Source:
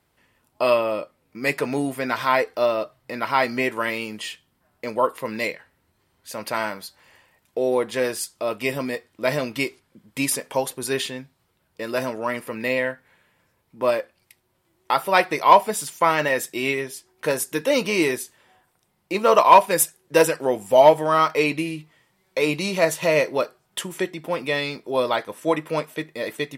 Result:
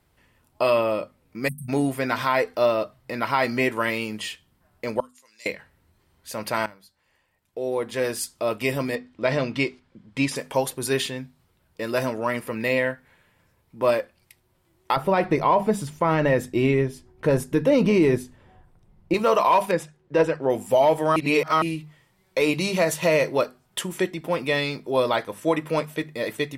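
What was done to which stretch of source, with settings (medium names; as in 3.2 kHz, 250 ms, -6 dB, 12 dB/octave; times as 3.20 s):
1.48–1.69 s: spectral selection erased 230–8100 Hz
5.00–5.46 s: band-pass filter 6.8 kHz, Q 4
6.66–8.29 s: fade in quadratic, from -17 dB
8.95–10.36 s: low-pass 4.9 kHz
14.96–19.14 s: tilt EQ -3.5 dB/octave
19.71–20.50 s: tape spacing loss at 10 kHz 25 dB
21.16–21.62 s: reverse
whole clip: bass shelf 130 Hz +11 dB; hum notches 50/100/150/200/250 Hz; peak limiter -10 dBFS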